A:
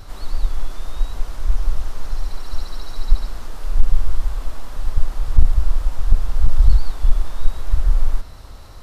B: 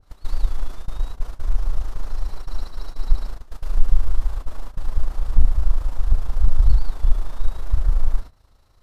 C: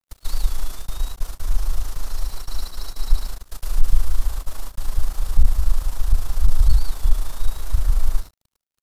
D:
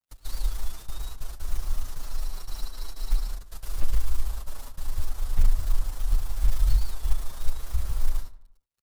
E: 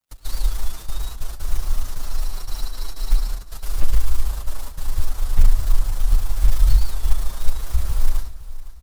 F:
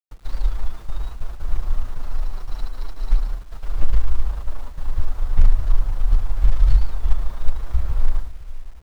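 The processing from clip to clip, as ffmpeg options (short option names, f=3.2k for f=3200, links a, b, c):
-af "tremolo=f=27:d=0.519,agate=range=-16dB:threshold=-24dB:ratio=16:detection=peak,adynamicequalizer=threshold=0.00224:dfrequency=1600:dqfactor=0.7:tfrequency=1600:tqfactor=0.7:attack=5:release=100:ratio=0.375:range=2:mode=cutabove:tftype=highshelf"
-filter_complex "[0:a]acrossover=split=100|270|540[a][b][c][d];[c]alimiter=level_in=25.5dB:limit=-24dB:level=0:latency=1,volume=-25.5dB[e];[a][b][e][d]amix=inputs=4:normalize=0,crystalizer=i=4:c=0,aeval=exprs='sgn(val(0))*max(abs(val(0))-0.00447,0)':c=same"
-filter_complex "[0:a]acrusher=bits=8:mode=log:mix=0:aa=0.000001,asplit=2[a][b];[b]adelay=88,lowpass=f=2.7k:p=1,volume=-16dB,asplit=2[c][d];[d]adelay=88,lowpass=f=2.7k:p=1,volume=0.5,asplit=2[e][f];[f]adelay=88,lowpass=f=2.7k:p=1,volume=0.5,asplit=2[g][h];[h]adelay=88,lowpass=f=2.7k:p=1,volume=0.5[i];[a][c][e][g][i]amix=inputs=5:normalize=0,asplit=2[j][k];[k]adelay=7.3,afreqshift=0.32[l];[j][l]amix=inputs=2:normalize=1,volume=-3.5dB"
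-af "aecho=1:1:510|1020|1530:0.158|0.0586|0.0217,volume=6.5dB"
-af "adynamicsmooth=sensitivity=4.5:basefreq=1.7k,acrusher=bits=8:mix=0:aa=0.000001"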